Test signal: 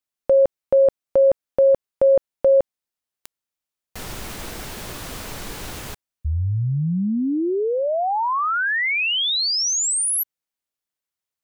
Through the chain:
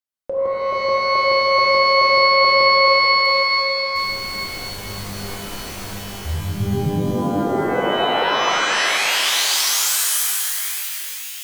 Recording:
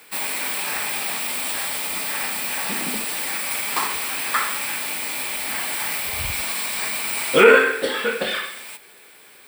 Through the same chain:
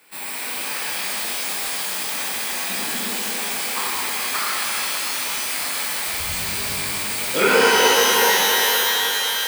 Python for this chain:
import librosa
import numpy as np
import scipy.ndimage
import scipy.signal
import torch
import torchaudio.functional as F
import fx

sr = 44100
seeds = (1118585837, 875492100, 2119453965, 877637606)

y = fx.echo_stepped(x, sr, ms=433, hz=480.0, octaves=0.7, feedback_pct=70, wet_db=-5.5)
y = fx.rev_shimmer(y, sr, seeds[0], rt60_s=3.6, semitones=12, shimmer_db=-2, drr_db=-5.5)
y = F.gain(torch.from_numpy(y), -8.0).numpy()